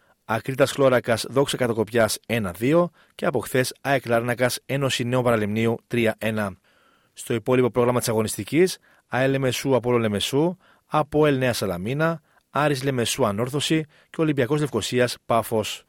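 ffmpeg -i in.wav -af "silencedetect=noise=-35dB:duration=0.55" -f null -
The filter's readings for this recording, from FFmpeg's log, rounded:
silence_start: 6.53
silence_end: 7.18 | silence_duration: 0.65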